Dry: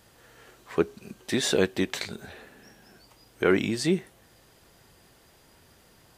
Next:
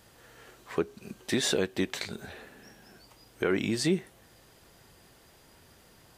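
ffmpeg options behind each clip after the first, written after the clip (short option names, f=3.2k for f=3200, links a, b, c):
-af "alimiter=limit=-15dB:level=0:latency=1:release=271"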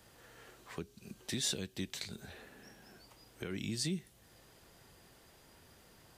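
-filter_complex "[0:a]acrossover=split=200|3000[a][b][c];[b]acompressor=threshold=-49dB:ratio=2.5[d];[a][d][c]amix=inputs=3:normalize=0,volume=-3.5dB"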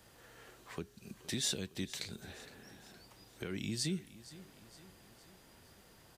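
-af "aecho=1:1:465|930|1395|1860:0.133|0.0693|0.0361|0.0188"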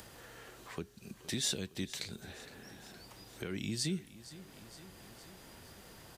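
-af "acompressor=mode=upward:threshold=-47dB:ratio=2.5,volume=1dB"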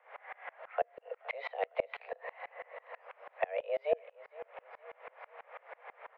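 -af "highpass=f=210:t=q:w=0.5412,highpass=f=210:t=q:w=1.307,lowpass=f=2.1k:t=q:w=0.5176,lowpass=f=2.1k:t=q:w=0.7071,lowpass=f=2.1k:t=q:w=1.932,afreqshift=290,aeval=exprs='val(0)*pow(10,-29*if(lt(mod(-6.1*n/s,1),2*abs(-6.1)/1000),1-mod(-6.1*n/s,1)/(2*abs(-6.1)/1000),(mod(-6.1*n/s,1)-2*abs(-6.1)/1000)/(1-2*abs(-6.1)/1000))/20)':c=same,volume=14.5dB"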